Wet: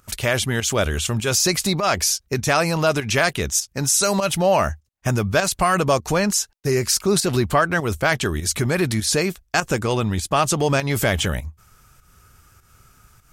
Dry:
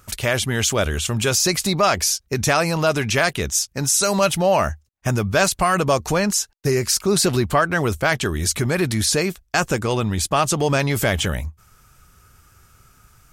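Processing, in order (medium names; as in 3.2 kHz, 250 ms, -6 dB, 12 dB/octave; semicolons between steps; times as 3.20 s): volume shaper 100 bpm, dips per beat 1, -10 dB, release 173 ms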